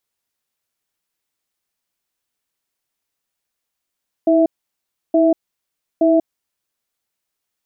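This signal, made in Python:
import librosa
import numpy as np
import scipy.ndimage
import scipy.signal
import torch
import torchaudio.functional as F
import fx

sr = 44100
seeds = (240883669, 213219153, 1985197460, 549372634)

y = fx.cadence(sr, length_s=1.96, low_hz=323.0, high_hz=658.0, on_s=0.19, off_s=0.68, level_db=-13.0)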